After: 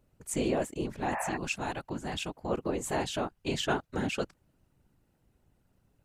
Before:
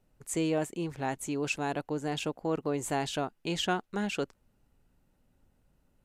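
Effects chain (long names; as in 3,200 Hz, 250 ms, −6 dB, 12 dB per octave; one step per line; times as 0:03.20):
0:01.14–0:01.34: healed spectral selection 560–2,700 Hz before
0:01.18–0:02.49: parametric band 410 Hz −11 dB 0.79 octaves
random phases in short frames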